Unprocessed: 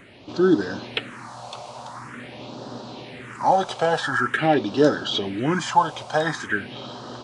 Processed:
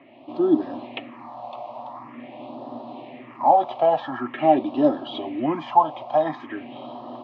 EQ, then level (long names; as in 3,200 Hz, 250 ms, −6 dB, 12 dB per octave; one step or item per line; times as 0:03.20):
loudspeaker in its box 220–2,700 Hz, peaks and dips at 230 Hz +9 dB, 470 Hz +3 dB, 670 Hz +6 dB, 1,100 Hz +4 dB, 1,500 Hz +4 dB
phaser with its sweep stopped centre 300 Hz, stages 8
0.0 dB